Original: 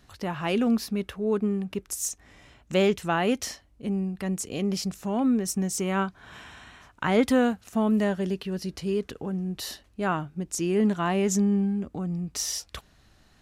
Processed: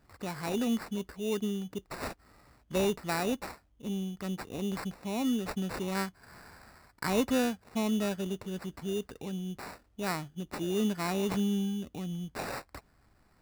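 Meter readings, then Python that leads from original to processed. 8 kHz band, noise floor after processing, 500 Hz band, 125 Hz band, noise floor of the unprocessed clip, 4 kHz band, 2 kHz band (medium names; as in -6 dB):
-10.5 dB, -67 dBFS, -6.5 dB, -6.5 dB, -60 dBFS, -5.0 dB, -5.5 dB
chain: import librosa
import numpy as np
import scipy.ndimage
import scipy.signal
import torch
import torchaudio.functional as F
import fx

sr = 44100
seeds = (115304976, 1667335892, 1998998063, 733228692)

y = fx.sample_hold(x, sr, seeds[0], rate_hz=3200.0, jitter_pct=0)
y = F.gain(torch.from_numpy(y), -6.5).numpy()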